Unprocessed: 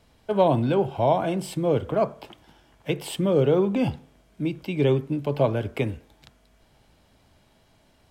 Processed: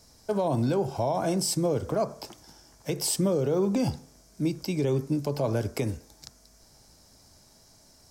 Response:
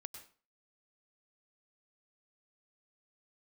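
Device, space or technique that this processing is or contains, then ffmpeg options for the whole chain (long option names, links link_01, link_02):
over-bright horn tweeter: -af "highshelf=frequency=4100:width_type=q:width=3:gain=10,alimiter=limit=-17.5dB:level=0:latency=1:release=83"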